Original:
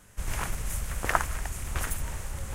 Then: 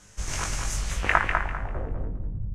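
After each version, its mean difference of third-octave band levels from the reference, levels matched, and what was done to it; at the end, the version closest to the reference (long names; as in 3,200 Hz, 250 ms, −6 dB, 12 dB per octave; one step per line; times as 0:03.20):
11.0 dB: high-shelf EQ 8,900 Hz +7.5 dB
double-tracking delay 20 ms −5 dB
low-pass filter sweep 6,000 Hz → 130 Hz, 0:00.73–0:02.44
repeating echo 198 ms, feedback 27%, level −5 dB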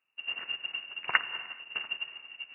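22.0 dB: voice inversion scrambler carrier 2,800 Hz
Bessel high-pass filter 170 Hz, order 2
reverb whose tail is shaped and stops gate 450 ms flat, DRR 5 dB
expander for the loud parts 2.5 to 1, over −37 dBFS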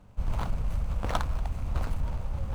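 7.5 dB: running median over 25 samples
high-shelf EQ 7,500 Hz −5.5 dB
soft clipping −21 dBFS, distortion −17 dB
parametric band 380 Hz −7.5 dB 0.47 octaves
level +4.5 dB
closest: third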